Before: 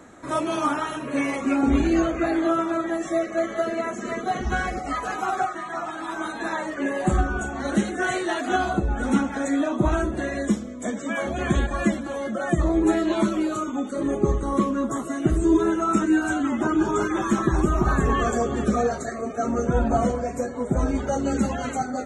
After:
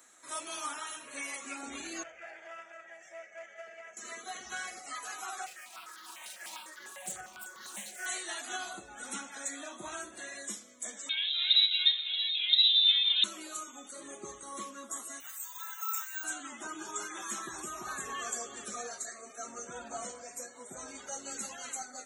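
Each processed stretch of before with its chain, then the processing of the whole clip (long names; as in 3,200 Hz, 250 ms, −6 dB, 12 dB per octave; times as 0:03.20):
0:02.03–0:03.97: low-pass filter 5,200 Hz 24 dB per octave + tube saturation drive 18 dB, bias 0.65 + phaser with its sweep stopped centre 1,100 Hz, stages 6
0:05.46–0:08.06: lower of the sound and its delayed copy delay 5.4 ms + step-sequenced phaser 10 Hz 310–2,500 Hz
0:11.09–0:13.24: single-tap delay 628 ms −12 dB + voice inversion scrambler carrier 3,900 Hz
0:15.20–0:16.24: elliptic high-pass filter 820 Hz, stop band 50 dB + bad sample-rate conversion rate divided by 2×, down filtered, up hold
whole clip: high-pass filter 56 Hz; first difference; hum removal 144.8 Hz, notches 25; level +1.5 dB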